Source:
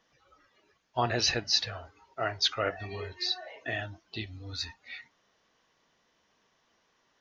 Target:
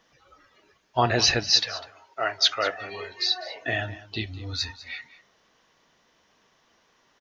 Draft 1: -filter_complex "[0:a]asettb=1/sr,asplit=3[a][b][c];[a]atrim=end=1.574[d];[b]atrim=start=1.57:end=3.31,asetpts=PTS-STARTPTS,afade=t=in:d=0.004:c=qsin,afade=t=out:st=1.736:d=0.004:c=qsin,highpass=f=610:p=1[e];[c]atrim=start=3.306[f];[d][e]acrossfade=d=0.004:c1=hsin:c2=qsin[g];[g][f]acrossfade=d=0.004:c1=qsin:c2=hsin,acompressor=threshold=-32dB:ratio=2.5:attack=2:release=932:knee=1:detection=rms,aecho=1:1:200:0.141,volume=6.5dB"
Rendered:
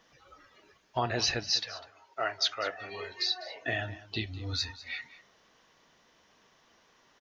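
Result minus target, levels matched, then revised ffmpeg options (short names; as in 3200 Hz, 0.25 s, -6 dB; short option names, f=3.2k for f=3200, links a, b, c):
compressor: peak gain reduction +10 dB
-filter_complex "[0:a]asettb=1/sr,asplit=3[a][b][c];[a]atrim=end=1.574[d];[b]atrim=start=1.57:end=3.31,asetpts=PTS-STARTPTS,afade=t=in:d=0.004:c=qsin,afade=t=out:st=1.736:d=0.004:c=qsin,highpass=f=610:p=1[e];[c]atrim=start=3.306[f];[d][e]acrossfade=d=0.004:c1=hsin:c2=qsin[g];[g][f]acrossfade=d=0.004:c1=qsin:c2=hsin,aecho=1:1:200:0.141,volume=6.5dB"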